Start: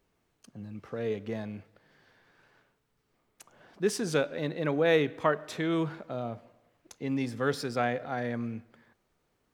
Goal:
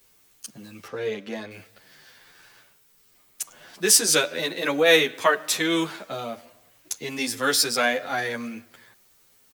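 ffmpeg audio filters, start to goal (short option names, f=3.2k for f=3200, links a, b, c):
-filter_complex "[0:a]asettb=1/sr,asplit=3[a][b][c];[a]atrim=end=0.874[d];[b]atrim=start=0.87:end=1.51,asetpts=PTS-STARTPTS,afade=t=in:d=0.004:c=qsin,afade=t=out:st=0.636:d=0.004:c=qsin,lowpass=f=2.2k:p=1[e];[c]atrim=start=1.506[f];[d][e]acrossfade=d=0.004:c1=hsin:c2=qsin[g];[g][f]acrossfade=d=0.004:c1=qsin:c2=hsin,acrossover=split=210|1400[h][i][j];[h]acompressor=threshold=-51dB:ratio=6[k];[k][i][j]amix=inputs=3:normalize=0,crystalizer=i=9:c=0,asplit=2[l][m];[m]adelay=9.7,afreqshift=1.4[n];[l][n]amix=inputs=2:normalize=1,volume=5.5dB"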